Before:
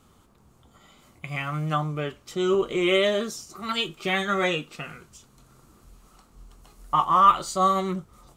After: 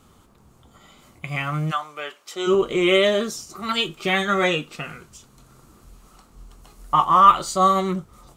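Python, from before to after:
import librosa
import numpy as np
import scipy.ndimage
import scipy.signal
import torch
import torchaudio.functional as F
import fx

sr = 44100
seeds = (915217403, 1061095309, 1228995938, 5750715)

y = fx.highpass(x, sr, hz=fx.line((1.7, 1100.0), (2.46, 470.0)), slope=12, at=(1.7, 2.46), fade=0.02)
y = y * 10.0 ** (4.0 / 20.0)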